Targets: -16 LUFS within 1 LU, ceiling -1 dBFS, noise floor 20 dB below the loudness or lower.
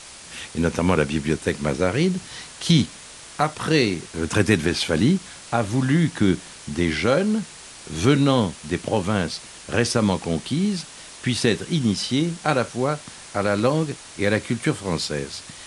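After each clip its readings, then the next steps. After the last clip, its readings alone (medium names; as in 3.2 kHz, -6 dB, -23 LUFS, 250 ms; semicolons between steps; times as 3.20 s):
noise floor -42 dBFS; noise floor target -43 dBFS; loudness -22.5 LUFS; peak level -4.0 dBFS; loudness target -16.0 LUFS
-> noise print and reduce 6 dB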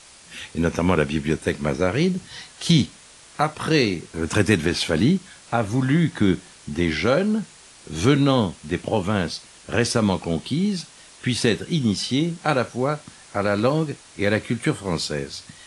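noise floor -48 dBFS; loudness -22.5 LUFS; peak level -4.0 dBFS; loudness target -16.0 LUFS
-> trim +6.5 dB; peak limiter -1 dBFS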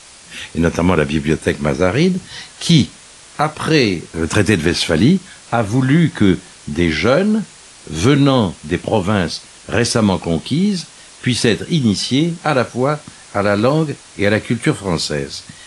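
loudness -16.5 LUFS; peak level -1.0 dBFS; noise floor -41 dBFS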